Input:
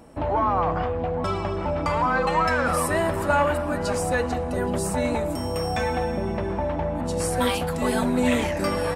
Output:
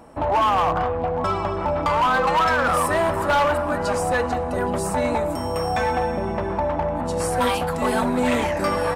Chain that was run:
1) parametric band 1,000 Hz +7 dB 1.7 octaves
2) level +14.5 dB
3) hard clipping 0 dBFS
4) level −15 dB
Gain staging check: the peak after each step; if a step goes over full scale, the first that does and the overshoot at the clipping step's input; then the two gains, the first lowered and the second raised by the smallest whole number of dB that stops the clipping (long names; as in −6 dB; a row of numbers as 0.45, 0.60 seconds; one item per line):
−4.5, +10.0, 0.0, −15.0 dBFS
step 2, 10.0 dB
step 2 +4.5 dB, step 4 −5 dB